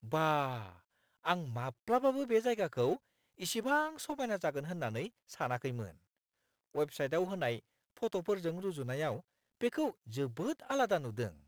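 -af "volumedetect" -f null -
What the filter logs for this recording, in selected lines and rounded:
mean_volume: -36.0 dB
max_volume: -14.8 dB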